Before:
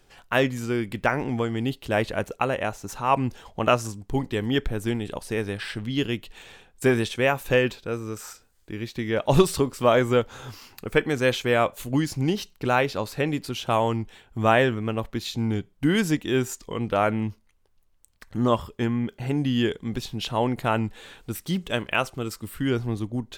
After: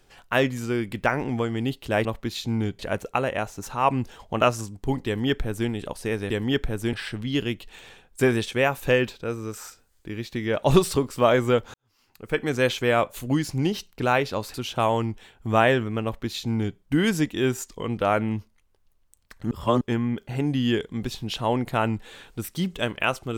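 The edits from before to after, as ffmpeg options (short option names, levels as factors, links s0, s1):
-filter_complex "[0:a]asplit=9[s0][s1][s2][s3][s4][s5][s6][s7][s8];[s0]atrim=end=2.052[s9];[s1]atrim=start=14.948:end=15.692[s10];[s2]atrim=start=2.048:end=5.562[s11];[s3]atrim=start=4.318:end=4.952[s12];[s4]atrim=start=5.558:end=10.37,asetpts=PTS-STARTPTS,afade=t=out:st=4.808:d=0.004:c=hsin[s13];[s5]atrim=start=10.37:end=13.172,asetpts=PTS-STARTPTS,afade=t=in:d=0.77:c=qua[s14];[s6]atrim=start=13.448:end=18.422[s15];[s7]atrim=start=18.418:end=18.722,asetpts=PTS-STARTPTS,areverse[s16];[s8]atrim=start=18.718[s17];[s9][s10]acrossfade=d=0.004:c1=hsin:c2=hsin[s18];[s18][s11]acrossfade=d=0.004:c1=hsin:c2=hsin[s19];[s19][s12]acrossfade=d=0.004:c1=hsin:c2=hsin[s20];[s13][s14]concat=n=2:v=0:a=1[s21];[s20][s21]acrossfade=d=0.004:c1=hsin:c2=hsin[s22];[s22][s15]acrossfade=d=0.004:c1=hsin:c2=hsin[s23];[s23][s16]acrossfade=d=0.004:c1=hsin:c2=hsin[s24];[s24][s17]acrossfade=d=0.004:c1=hsin:c2=hsin"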